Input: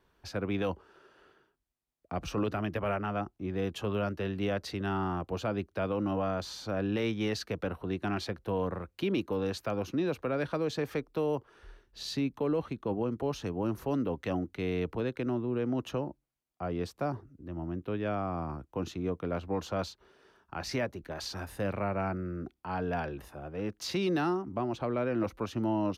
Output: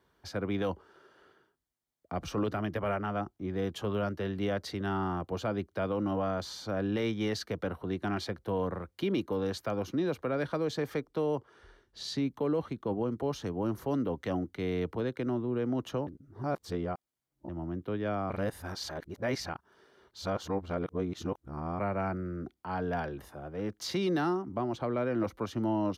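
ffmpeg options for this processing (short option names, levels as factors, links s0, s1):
-filter_complex "[0:a]asettb=1/sr,asplit=3[s0][s1][s2];[s0]atrim=end=11.074[s3];[s1]atrim=start=11.07:end=12.26,asetpts=PTS-STARTPTS,afade=t=in:d=0.004:c=qsin,afade=t=out:st=1.186:d=0.004:c=qsin,lowpass=10000[s4];[s2]atrim=start=12.256[s5];[s3][s4]acrossfade=d=0.004:c1=hsin:c2=qsin[s6];[s6][s5]acrossfade=d=0.004:c1=qsin:c2=hsin,asplit=5[s7][s8][s9][s10][s11];[s7]atrim=end=16.072[s12];[s8]atrim=start=16.068:end=17.492,asetpts=PTS-STARTPTS,areverse[s13];[s9]atrim=start=17.488:end=18.302[s14];[s10]atrim=start=18.298:end=21.792,asetpts=PTS-STARTPTS,areverse[s15];[s11]atrim=start=21.788[s16];[s12][s13]acrossfade=d=0.004:c1=hsin:c2=hsin[s17];[s17][s14]acrossfade=d=0.004:c1=hsin:c2=hsin[s18];[s18][s15]acrossfade=d=0.004:c1=hsin:c2=hsin[s19];[s19][s16]acrossfade=d=0.004:c1=hsin:c2=hsin,highpass=63,bandreject=f=2600:w=7.9"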